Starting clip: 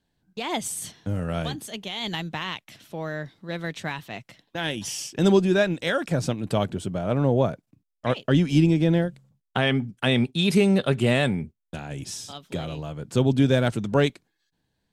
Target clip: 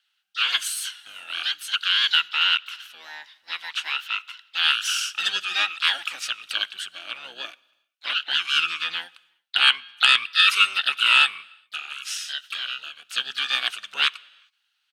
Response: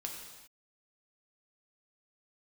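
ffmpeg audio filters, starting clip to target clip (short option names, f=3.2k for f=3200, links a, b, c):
-filter_complex "[0:a]highpass=f=2.8k:t=q:w=6.5,bandreject=f=7.5k:w=12,asplit=2[a][b];[1:a]atrim=start_sample=2205,lowshelf=f=69:g=8[c];[b][c]afir=irnorm=-1:irlink=0,volume=-18.5dB[d];[a][d]amix=inputs=2:normalize=0,asplit=4[e][f][g][h];[f]asetrate=22050,aresample=44100,atempo=2,volume=-7dB[i];[g]asetrate=52444,aresample=44100,atempo=0.840896,volume=-17dB[j];[h]asetrate=58866,aresample=44100,atempo=0.749154,volume=-13dB[k];[e][i][j][k]amix=inputs=4:normalize=0,aeval=exprs='1.12*sin(PI/2*1.41*val(0)/1.12)':c=same,volume=-6dB"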